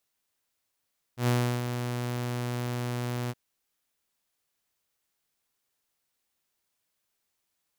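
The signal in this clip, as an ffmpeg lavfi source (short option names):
-f lavfi -i "aevalsrc='0.112*(2*mod(122*t,1)-1)':d=2.169:s=44100,afade=t=in:d=0.104,afade=t=out:st=0.104:d=0.337:silence=0.398,afade=t=out:st=2.13:d=0.039"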